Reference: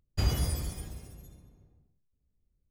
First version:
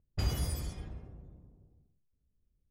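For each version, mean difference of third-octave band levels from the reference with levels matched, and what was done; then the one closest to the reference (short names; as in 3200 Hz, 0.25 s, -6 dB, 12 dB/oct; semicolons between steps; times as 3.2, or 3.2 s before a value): 3.5 dB: low-pass opened by the level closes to 680 Hz, open at -27 dBFS; in parallel at -3 dB: compressor, threshold -37 dBFS, peak gain reduction 15.5 dB; on the sum: gain -5.5 dB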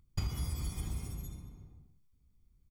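6.5 dB: comb 0.9 ms, depth 54%; compressor 12:1, threshold -36 dBFS, peak gain reduction 19 dB; gain +4.5 dB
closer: first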